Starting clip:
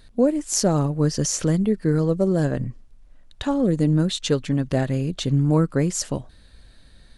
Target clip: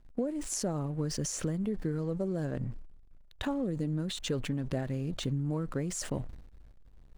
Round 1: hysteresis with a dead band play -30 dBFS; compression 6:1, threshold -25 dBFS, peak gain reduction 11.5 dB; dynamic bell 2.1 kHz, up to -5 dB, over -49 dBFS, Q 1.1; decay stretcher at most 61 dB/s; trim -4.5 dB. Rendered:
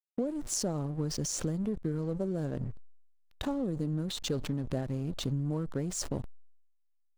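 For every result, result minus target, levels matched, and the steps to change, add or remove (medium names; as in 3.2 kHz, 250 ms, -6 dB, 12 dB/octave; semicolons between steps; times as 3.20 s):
hysteresis with a dead band: distortion +9 dB; 2 kHz band -4.0 dB
change: hysteresis with a dead band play -40.5 dBFS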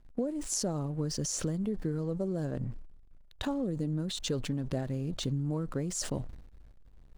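2 kHz band -3.0 dB
change: dynamic bell 4.8 kHz, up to -5 dB, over -49 dBFS, Q 1.1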